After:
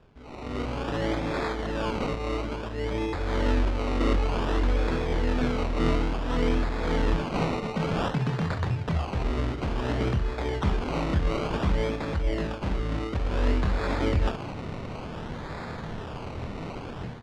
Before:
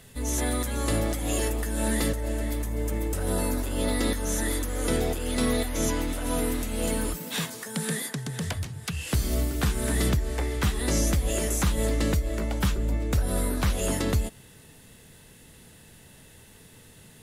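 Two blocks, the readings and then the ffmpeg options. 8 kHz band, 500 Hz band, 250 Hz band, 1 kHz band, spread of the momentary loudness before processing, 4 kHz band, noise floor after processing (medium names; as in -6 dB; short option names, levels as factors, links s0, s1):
-19.5 dB, +1.0 dB, 0.0 dB, +4.5 dB, 5 LU, -3.0 dB, -37 dBFS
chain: -filter_complex "[0:a]areverse,acompressor=threshold=0.00794:ratio=4,areverse,acrossover=split=2000[s0][s1];[s0]aeval=exprs='val(0)*(1-0.5/2+0.5/2*cos(2*PI*1.7*n/s))':c=same[s2];[s1]aeval=exprs='val(0)*(1-0.5/2-0.5/2*cos(2*PI*1.7*n/s))':c=same[s3];[s2][s3]amix=inputs=2:normalize=0,dynaudnorm=f=370:g=3:m=6.68,aecho=1:1:25|67:0.631|0.316,acrusher=samples=21:mix=1:aa=0.000001:lfo=1:lforange=12.6:lforate=0.56,lowpass=3900"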